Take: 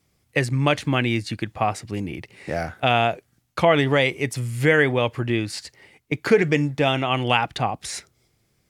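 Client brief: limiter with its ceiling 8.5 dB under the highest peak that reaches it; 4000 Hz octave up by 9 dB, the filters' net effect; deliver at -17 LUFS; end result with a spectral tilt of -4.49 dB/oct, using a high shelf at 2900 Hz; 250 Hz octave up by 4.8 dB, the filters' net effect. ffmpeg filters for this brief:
-af "equalizer=f=250:t=o:g=6,highshelf=f=2.9k:g=5.5,equalizer=f=4k:t=o:g=8,volume=4.5dB,alimiter=limit=-3dB:level=0:latency=1"

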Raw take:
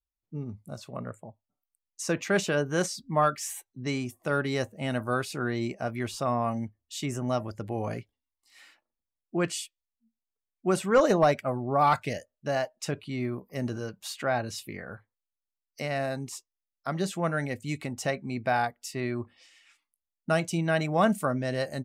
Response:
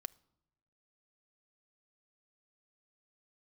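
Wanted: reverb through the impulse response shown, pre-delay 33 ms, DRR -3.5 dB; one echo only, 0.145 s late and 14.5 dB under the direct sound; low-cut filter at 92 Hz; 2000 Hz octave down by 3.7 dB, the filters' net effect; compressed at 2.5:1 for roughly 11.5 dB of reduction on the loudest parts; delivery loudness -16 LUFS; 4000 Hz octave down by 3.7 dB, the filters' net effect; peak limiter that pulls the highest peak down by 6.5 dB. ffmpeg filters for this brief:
-filter_complex "[0:a]highpass=92,equalizer=f=2k:t=o:g=-4.5,equalizer=f=4k:t=o:g=-3.5,acompressor=threshold=-35dB:ratio=2.5,alimiter=level_in=3dB:limit=-24dB:level=0:latency=1,volume=-3dB,aecho=1:1:145:0.188,asplit=2[a][b];[1:a]atrim=start_sample=2205,adelay=33[c];[b][c]afir=irnorm=-1:irlink=0,volume=7.5dB[d];[a][d]amix=inputs=2:normalize=0,volume=18dB"

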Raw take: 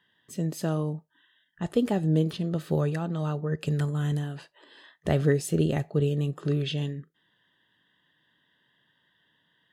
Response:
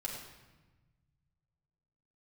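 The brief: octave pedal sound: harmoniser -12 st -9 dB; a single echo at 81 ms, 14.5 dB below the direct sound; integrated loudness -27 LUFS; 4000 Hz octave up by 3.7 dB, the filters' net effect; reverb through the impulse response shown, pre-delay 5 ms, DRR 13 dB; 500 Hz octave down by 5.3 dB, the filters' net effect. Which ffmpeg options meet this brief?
-filter_complex "[0:a]equalizer=f=500:t=o:g=-6.5,equalizer=f=4k:t=o:g=5,aecho=1:1:81:0.188,asplit=2[a][b];[1:a]atrim=start_sample=2205,adelay=5[c];[b][c]afir=irnorm=-1:irlink=0,volume=-14dB[d];[a][d]amix=inputs=2:normalize=0,asplit=2[e][f];[f]asetrate=22050,aresample=44100,atempo=2,volume=-9dB[g];[e][g]amix=inputs=2:normalize=0,volume=1dB"

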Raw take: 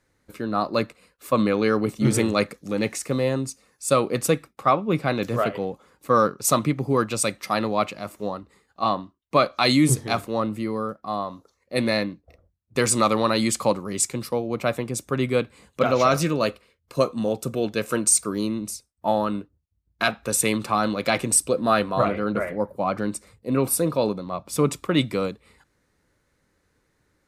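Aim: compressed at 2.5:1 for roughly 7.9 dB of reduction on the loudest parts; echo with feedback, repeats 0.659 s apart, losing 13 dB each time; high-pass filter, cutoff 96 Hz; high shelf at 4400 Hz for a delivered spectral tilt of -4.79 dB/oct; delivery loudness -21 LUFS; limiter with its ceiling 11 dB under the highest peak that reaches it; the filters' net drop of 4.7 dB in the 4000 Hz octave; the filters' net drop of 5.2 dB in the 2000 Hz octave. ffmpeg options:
-af "highpass=96,equalizer=f=2k:t=o:g=-6.5,equalizer=f=4k:t=o:g=-8,highshelf=f=4.4k:g=8,acompressor=threshold=-21dB:ratio=2.5,alimiter=limit=-19.5dB:level=0:latency=1,aecho=1:1:659|1318|1977:0.224|0.0493|0.0108,volume=9.5dB"

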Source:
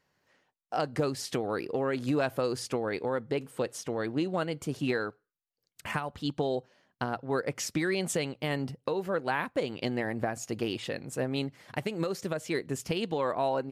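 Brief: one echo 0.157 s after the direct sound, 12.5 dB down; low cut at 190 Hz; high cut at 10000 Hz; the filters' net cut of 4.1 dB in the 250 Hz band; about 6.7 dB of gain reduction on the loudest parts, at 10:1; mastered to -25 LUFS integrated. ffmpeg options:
-af "highpass=190,lowpass=10k,equalizer=f=250:t=o:g=-4,acompressor=threshold=-32dB:ratio=10,aecho=1:1:157:0.237,volume=13dB"

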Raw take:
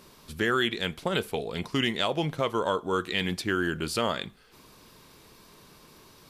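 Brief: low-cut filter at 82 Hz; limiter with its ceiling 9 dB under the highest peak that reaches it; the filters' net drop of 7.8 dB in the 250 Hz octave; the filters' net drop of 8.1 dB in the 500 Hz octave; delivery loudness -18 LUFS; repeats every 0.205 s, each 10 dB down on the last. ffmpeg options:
-af "highpass=82,equalizer=f=250:t=o:g=-8.5,equalizer=f=500:t=o:g=-7.5,alimiter=limit=-21.5dB:level=0:latency=1,aecho=1:1:205|410|615|820:0.316|0.101|0.0324|0.0104,volume=15.5dB"

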